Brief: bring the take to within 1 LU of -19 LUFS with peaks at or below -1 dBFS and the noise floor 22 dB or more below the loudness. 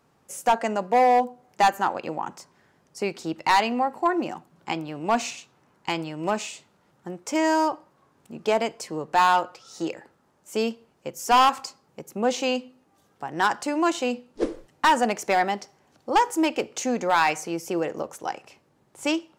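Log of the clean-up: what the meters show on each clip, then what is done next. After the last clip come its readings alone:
clipped 0.8%; flat tops at -13.0 dBFS; loudness -25.0 LUFS; peak -13.0 dBFS; loudness target -19.0 LUFS
-> clip repair -13 dBFS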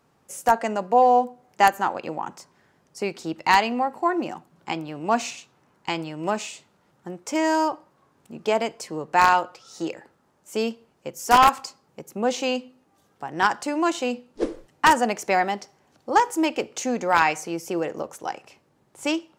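clipped 0.0%; loudness -23.5 LUFS; peak -4.0 dBFS; loudness target -19.0 LUFS
-> gain +4.5 dB; limiter -1 dBFS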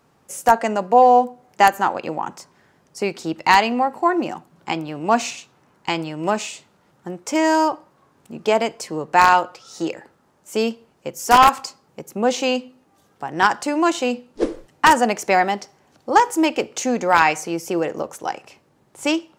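loudness -19.5 LUFS; peak -1.0 dBFS; noise floor -60 dBFS

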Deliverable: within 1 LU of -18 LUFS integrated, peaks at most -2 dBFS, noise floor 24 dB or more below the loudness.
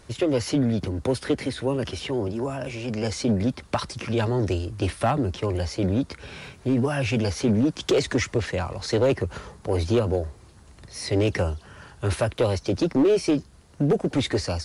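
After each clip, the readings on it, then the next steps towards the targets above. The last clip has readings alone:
clipped 0.7%; flat tops at -14.5 dBFS; loudness -25.0 LUFS; peak -14.5 dBFS; loudness target -18.0 LUFS
-> clip repair -14.5 dBFS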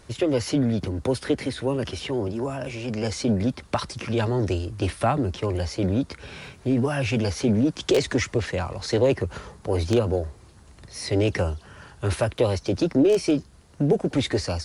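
clipped 0.0%; loudness -25.0 LUFS; peak -5.5 dBFS; loudness target -18.0 LUFS
-> gain +7 dB; limiter -2 dBFS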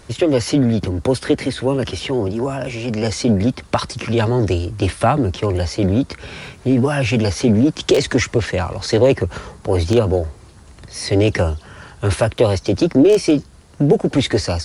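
loudness -18.0 LUFS; peak -2.0 dBFS; noise floor -44 dBFS

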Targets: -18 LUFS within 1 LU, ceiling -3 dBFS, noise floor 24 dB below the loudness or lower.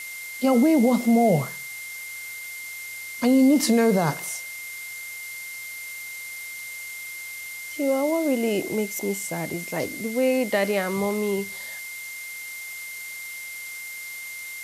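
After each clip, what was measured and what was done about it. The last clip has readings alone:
steady tone 2100 Hz; tone level -35 dBFS; noise floor -37 dBFS; noise floor target -50 dBFS; loudness -25.5 LUFS; peak -10.5 dBFS; loudness target -18.0 LUFS
-> notch 2100 Hz, Q 30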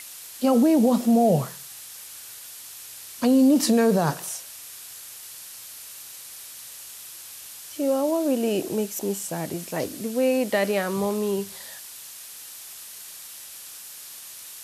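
steady tone none; noise floor -42 dBFS; noise floor target -47 dBFS
-> denoiser 6 dB, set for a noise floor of -42 dBFS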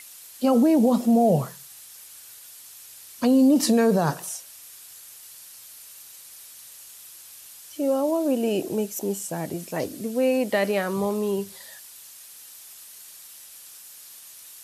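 noise floor -46 dBFS; noise floor target -47 dBFS
-> denoiser 6 dB, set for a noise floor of -46 dBFS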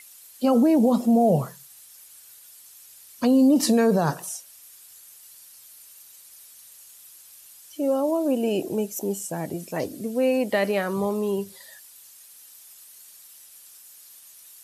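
noise floor -49 dBFS; loudness -23.0 LUFS; peak -11.0 dBFS; loudness target -18.0 LUFS
-> gain +5 dB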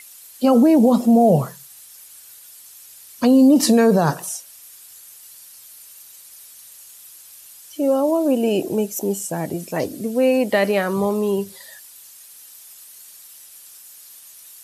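loudness -18.0 LUFS; peak -6.0 dBFS; noise floor -44 dBFS

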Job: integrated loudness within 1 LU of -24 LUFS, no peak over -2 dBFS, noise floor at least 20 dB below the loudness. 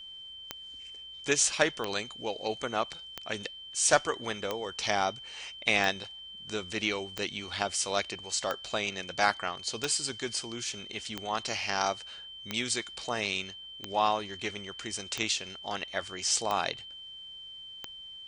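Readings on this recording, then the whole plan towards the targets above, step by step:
clicks 14; steady tone 3100 Hz; tone level -43 dBFS; loudness -31.0 LUFS; peak -9.5 dBFS; loudness target -24.0 LUFS
-> de-click; notch 3100 Hz, Q 30; gain +7 dB

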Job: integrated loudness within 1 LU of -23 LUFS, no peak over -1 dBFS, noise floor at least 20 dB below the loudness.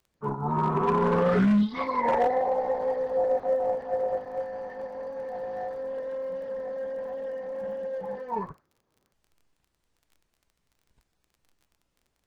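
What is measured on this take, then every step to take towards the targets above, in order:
ticks 24/s; loudness -28.0 LUFS; peak -16.5 dBFS; loudness target -23.0 LUFS
-> de-click; gain +5 dB

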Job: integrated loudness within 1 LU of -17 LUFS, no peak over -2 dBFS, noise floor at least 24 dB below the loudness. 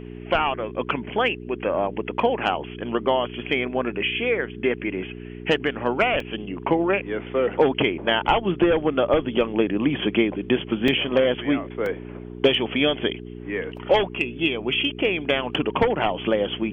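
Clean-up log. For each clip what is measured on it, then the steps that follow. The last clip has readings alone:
dropouts 3; longest dropout 2.2 ms; hum 60 Hz; harmonics up to 420 Hz; hum level -34 dBFS; loudness -23.0 LUFS; peak -6.5 dBFS; loudness target -17.0 LUFS
-> interpolate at 6.2/10.88/11.86, 2.2 ms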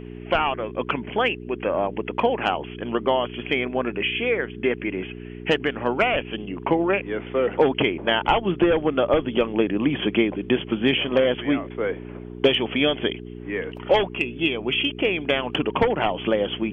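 dropouts 0; hum 60 Hz; harmonics up to 420 Hz; hum level -34 dBFS
-> de-hum 60 Hz, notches 7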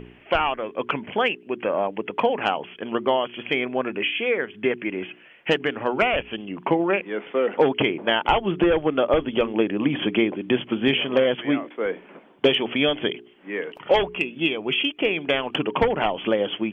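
hum none; loudness -23.5 LUFS; peak -7.0 dBFS; loudness target -17.0 LUFS
-> gain +6.5 dB; limiter -2 dBFS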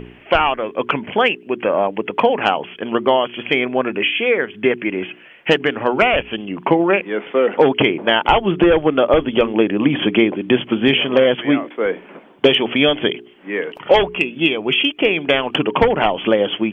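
loudness -17.0 LUFS; peak -2.0 dBFS; noise floor -44 dBFS

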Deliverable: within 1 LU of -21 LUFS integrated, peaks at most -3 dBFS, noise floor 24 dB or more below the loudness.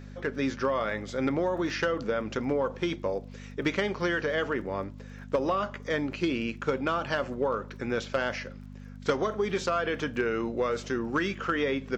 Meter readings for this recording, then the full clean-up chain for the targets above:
ticks 30/s; hum 50 Hz; harmonics up to 250 Hz; hum level -41 dBFS; loudness -30.0 LUFS; peak -15.5 dBFS; loudness target -21.0 LUFS
-> de-click; de-hum 50 Hz, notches 5; gain +9 dB

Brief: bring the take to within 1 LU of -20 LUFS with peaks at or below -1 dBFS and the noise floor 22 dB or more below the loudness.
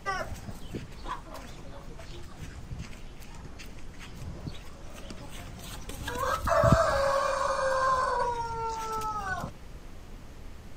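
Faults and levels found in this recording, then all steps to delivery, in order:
noise floor -46 dBFS; noise floor target -52 dBFS; loudness -29.5 LUFS; peak -8.5 dBFS; loudness target -20.0 LUFS
-> noise print and reduce 6 dB; gain +9.5 dB; limiter -1 dBFS

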